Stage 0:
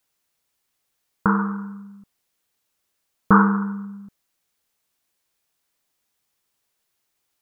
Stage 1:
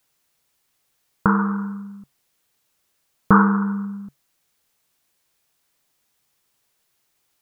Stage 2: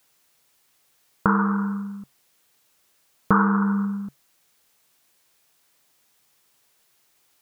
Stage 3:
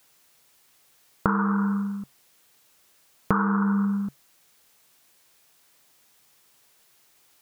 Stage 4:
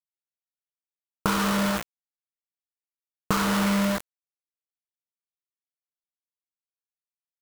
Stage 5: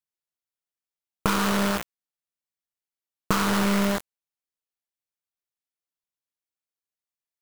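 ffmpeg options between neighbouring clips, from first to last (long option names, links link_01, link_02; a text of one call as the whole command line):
ffmpeg -i in.wav -filter_complex "[0:a]equalizer=frequency=140:width_type=o:width=0.23:gain=5.5,asplit=2[link_01][link_02];[link_02]acompressor=threshold=-25dB:ratio=6,volume=1dB[link_03];[link_01][link_03]amix=inputs=2:normalize=0,volume=-1.5dB" out.wav
ffmpeg -i in.wav -af "lowshelf=frequency=140:gain=-6.5,alimiter=limit=-12.5dB:level=0:latency=1:release=458,volume=5.5dB" out.wav
ffmpeg -i in.wav -af "acompressor=threshold=-24dB:ratio=4,volume=3.5dB" out.wav
ffmpeg -i in.wav -af "acrusher=bits=3:mix=0:aa=0.000001,volume=-2.5dB" out.wav
ffmpeg -i in.wav -af "aeval=exprs='0.447*(cos(1*acos(clip(val(0)/0.447,-1,1)))-cos(1*PI/2))+0.0501*(cos(6*acos(clip(val(0)/0.447,-1,1)))-cos(6*PI/2))':channel_layout=same" out.wav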